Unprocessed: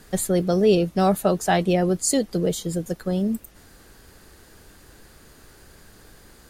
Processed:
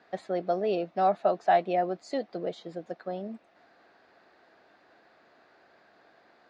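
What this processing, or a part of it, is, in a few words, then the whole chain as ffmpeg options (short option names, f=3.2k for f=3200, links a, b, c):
phone earpiece: -af "highpass=360,equalizer=f=440:t=q:w=4:g=-4,equalizer=f=690:t=q:w=4:g=10,equalizer=f=3.1k:t=q:w=4:g=-7,lowpass=f=3.7k:w=0.5412,lowpass=f=3.7k:w=1.3066,volume=-6.5dB"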